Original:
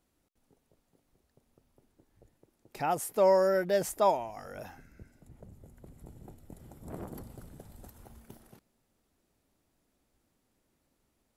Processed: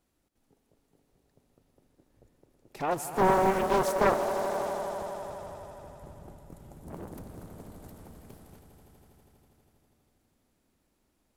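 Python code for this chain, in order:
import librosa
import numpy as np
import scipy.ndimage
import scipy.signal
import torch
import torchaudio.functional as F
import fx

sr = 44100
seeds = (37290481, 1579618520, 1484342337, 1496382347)

y = fx.echo_swell(x, sr, ms=81, loudest=5, wet_db=-12.5)
y = fx.doppler_dist(y, sr, depth_ms=0.94)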